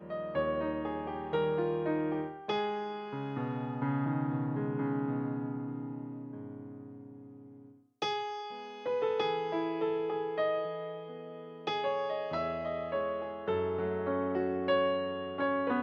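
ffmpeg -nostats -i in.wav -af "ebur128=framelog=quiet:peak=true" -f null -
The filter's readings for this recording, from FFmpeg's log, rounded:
Integrated loudness:
  I:         -33.9 LUFS
  Threshold: -44.4 LUFS
Loudness range:
  LRA:         6.1 LU
  Threshold: -54.9 LUFS
  LRA low:   -39.0 LUFS
  LRA high:  -32.9 LUFS
True peak:
  Peak:      -17.0 dBFS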